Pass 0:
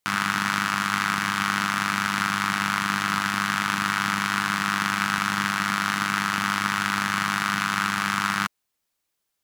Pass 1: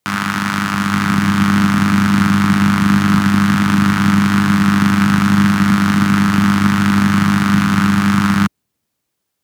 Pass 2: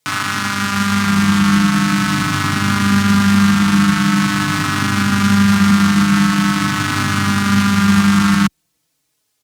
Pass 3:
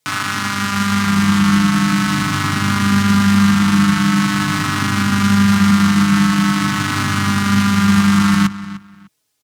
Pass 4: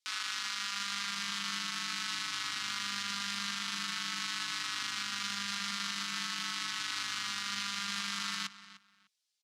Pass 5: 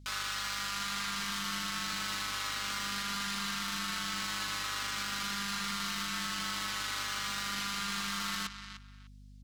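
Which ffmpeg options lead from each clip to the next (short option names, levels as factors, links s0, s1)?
-filter_complex "[0:a]highpass=77,lowshelf=f=500:g=9,acrossover=split=330|4200[s0][s1][s2];[s0]dynaudnorm=f=170:g=11:m=3.35[s3];[s3][s1][s2]amix=inputs=3:normalize=0,volume=1.5"
-filter_complex "[0:a]equalizer=f=6200:t=o:w=2.7:g=6.5,alimiter=level_in=2.11:limit=0.891:release=50:level=0:latency=1,asplit=2[s0][s1];[s1]adelay=4.2,afreqshift=-0.44[s2];[s0][s2]amix=inputs=2:normalize=1,volume=0.891"
-filter_complex "[0:a]asplit=2[s0][s1];[s1]adelay=301,lowpass=f=4200:p=1,volume=0.178,asplit=2[s2][s3];[s3]adelay=301,lowpass=f=4200:p=1,volume=0.22[s4];[s0][s2][s4]amix=inputs=3:normalize=0,volume=0.891"
-af "bandpass=f=4300:t=q:w=1.2:csg=0,volume=0.355"
-af "aeval=exprs='val(0)+0.00126*(sin(2*PI*50*n/s)+sin(2*PI*2*50*n/s)/2+sin(2*PI*3*50*n/s)/3+sin(2*PI*4*50*n/s)/4+sin(2*PI*5*50*n/s)/5)':c=same,asoftclip=type=tanh:threshold=0.015,volume=2.11"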